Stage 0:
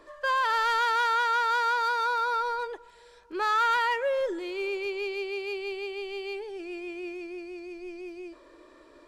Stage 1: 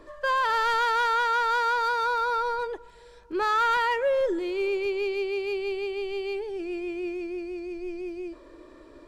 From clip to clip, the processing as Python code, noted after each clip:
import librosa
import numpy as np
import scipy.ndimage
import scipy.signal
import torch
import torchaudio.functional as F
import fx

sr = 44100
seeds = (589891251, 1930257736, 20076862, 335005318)

y = fx.low_shelf(x, sr, hz=350.0, db=11.5)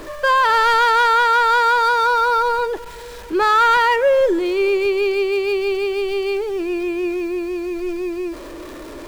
y = x + 0.5 * 10.0 ** (-42.0 / 20.0) * np.sign(x)
y = F.gain(torch.from_numpy(y), 9.0).numpy()